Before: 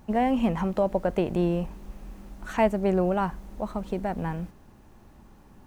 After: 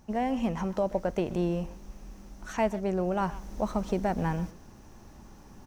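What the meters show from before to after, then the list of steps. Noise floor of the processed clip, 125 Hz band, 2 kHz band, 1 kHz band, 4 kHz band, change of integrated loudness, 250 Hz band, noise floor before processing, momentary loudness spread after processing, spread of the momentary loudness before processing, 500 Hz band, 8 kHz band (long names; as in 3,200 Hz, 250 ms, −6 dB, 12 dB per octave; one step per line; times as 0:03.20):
−52 dBFS, −2.5 dB, −3.0 dB, −3.5 dB, −2.5 dB, −3.5 dB, −3.5 dB, −53 dBFS, 16 LU, 18 LU, −4.0 dB, can't be measured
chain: parametric band 5,800 Hz +11 dB 0.46 octaves
speech leveller within 5 dB 0.5 s
far-end echo of a speakerphone 130 ms, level −16 dB
level −3 dB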